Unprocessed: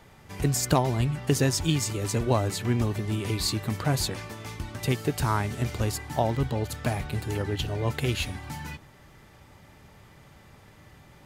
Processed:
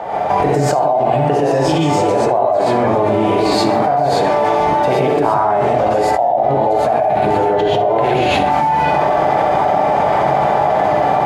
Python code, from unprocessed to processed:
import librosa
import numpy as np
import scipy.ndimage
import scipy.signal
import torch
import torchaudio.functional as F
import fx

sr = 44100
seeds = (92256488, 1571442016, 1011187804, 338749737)

y = fx.rider(x, sr, range_db=10, speed_s=0.5)
y = fx.bandpass_q(y, sr, hz=710.0, q=5.0)
y = fx.echo_feedback(y, sr, ms=66, feedback_pct=49, wet_db=-10.5)
y = fx.rev_gated(y, sr, seeds[0], gate_ms=160, shape='rising', drr_db=-7.0)
y = fx.env_flatten(y, sr, amount_pct=100)
y = y * 10.0 ** (3.0 / 20.0)